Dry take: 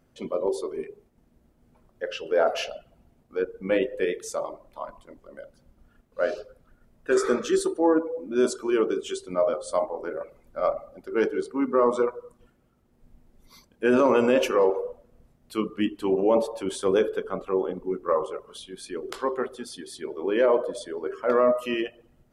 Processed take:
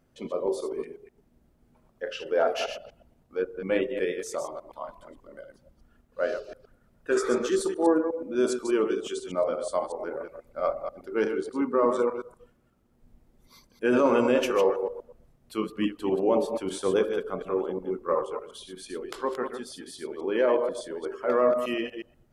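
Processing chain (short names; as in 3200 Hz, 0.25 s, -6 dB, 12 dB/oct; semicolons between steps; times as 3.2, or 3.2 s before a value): reverse delay 0.121 s, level -7 dB; gain -2.5 dB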